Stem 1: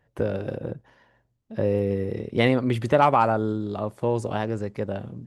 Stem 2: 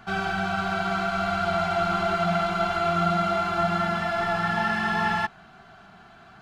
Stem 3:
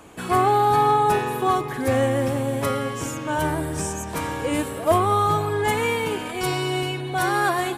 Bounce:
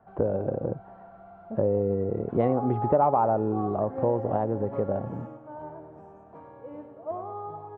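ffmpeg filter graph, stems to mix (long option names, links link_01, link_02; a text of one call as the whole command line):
ffmpeg -i stem1.wav -i stem2.wav -i stem3.wav -filter_complex "[0:a]volume=2dB,asplit=2[link_01][link_02];[1:a]acompressor=threshold=-31dB:ratio=5,asoftclip=type=tanh:threshold=-35.5dB,volume=-11.5dB[link_03];[2:a]highpass=frequency=170:poles=1,adelay=2100,volume=-12.5dB,asplit=2[link_04][link_05];[link_05]volume=-6.5dB[link_06];[link_02]apad=whole_len=435583[link_07];[link_04][link_07]sidechaingate=range=-33dB:threshold=-52dB:ratio=16:detection=peak[link_08];[link_06]aecho=0:1:95|190|285|380|475:1|0.36|0.13|0.0467|0.0168[link_09];[link_01][link_03][link_08][link_09]amix=inputs=4:normalize=0,lowpass=frequency=770:width_type=q:width=1.8,acompressor=threshold=-25dB:ratio=2" out.wav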